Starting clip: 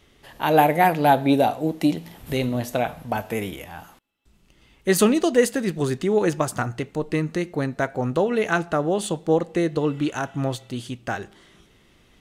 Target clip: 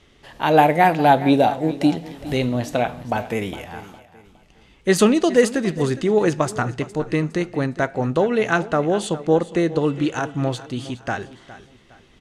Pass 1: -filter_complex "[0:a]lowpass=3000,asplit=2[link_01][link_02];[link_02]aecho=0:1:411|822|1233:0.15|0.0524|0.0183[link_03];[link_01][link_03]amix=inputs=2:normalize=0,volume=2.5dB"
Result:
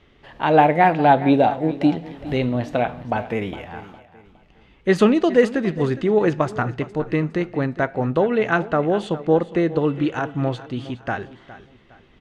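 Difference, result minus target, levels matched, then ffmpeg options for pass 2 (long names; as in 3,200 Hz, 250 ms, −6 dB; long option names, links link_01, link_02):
8,000 Hz band −14.0 dB
-filter_complex "[0:a]lowpass=8000,asplit=2[link_01][link_02];[link_02]aecho=0:1:411|822|1233:0.15|0.0524|0.0183[link_03];[link_01][link_03]amix=inputs=2:normalize=0,volume=2.5dB"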